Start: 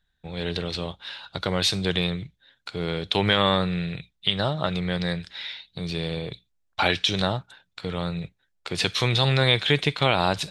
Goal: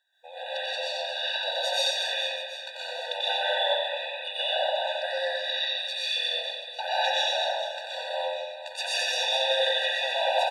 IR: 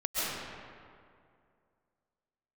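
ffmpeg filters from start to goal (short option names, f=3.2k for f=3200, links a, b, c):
-filter_complex "[0:a]asettb=1/sr,asplit=3[a][b][c];[a]atrim=end=5.454[d];[b]atrim=start=5.45:end=6.17,asetpts=PTS-STARTPTS,afade=t=in:d=0.004:c=qsin,afade=t=out:st=0.716:d=0.004:c=qsin,highpass=f=1.5k:w=0.5412,highpass=f=1.5k:w=1.3066[e];[c]atrim=start=6.166[f];[d][e]acrossfade=d=0.004:c1=hsin:c2=qsin[g];[g][f]acrossfade=d=0.004:c1=qsin:c2=hsin,acompressor=threshold=-36dB:ratio=2.5,aecho=1:1:90|225|427.5|731.2|1187:0.631|0.398|0.251|0.158|0.1[h];[1:a]atrim=start_sample=2205,afade=t=out:st=0.37:d=0.01,atrim=end_sample=16758,asetrate=48510,aresample=44100[i];[h][i]afir=irnorm=-1:irlink=0,afftfilt=real='re*eq(mod(floor(b*sr/1024/490),2),1)':imag='im*eq(mod(floor(b*sr/1024/490),2),1)':win_size=1024:overlap=0.75,volume=4dB"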